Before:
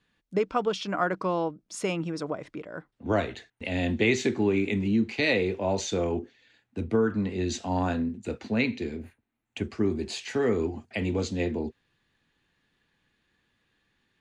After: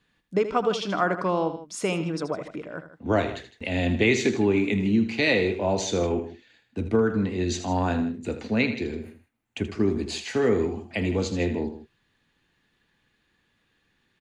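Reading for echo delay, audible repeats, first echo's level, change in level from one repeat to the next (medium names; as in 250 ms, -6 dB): 79 ms, 2, -11.0 dB, -4.5 dB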